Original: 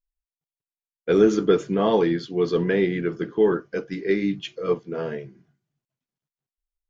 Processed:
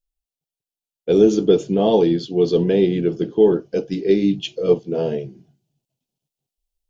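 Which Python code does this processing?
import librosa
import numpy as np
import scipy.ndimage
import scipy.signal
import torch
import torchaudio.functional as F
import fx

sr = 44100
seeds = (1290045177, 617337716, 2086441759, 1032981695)

p1 = fx.band_shelf(x, sr, hz=1500.0, db=-14.5, octaves=1.3)
p2 = fx.rider(p1, sr, range_db=5, speed_s=0.5)
y = p1 + (p2 * 10.0 ** (-2.0 / 20.0))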